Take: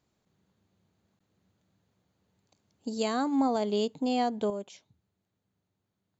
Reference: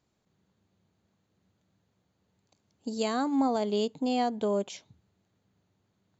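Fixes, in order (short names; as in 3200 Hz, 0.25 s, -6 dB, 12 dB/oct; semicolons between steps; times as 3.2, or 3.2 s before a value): interpolate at 1.19, 15 ms; gain correction +8 dB, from 4.5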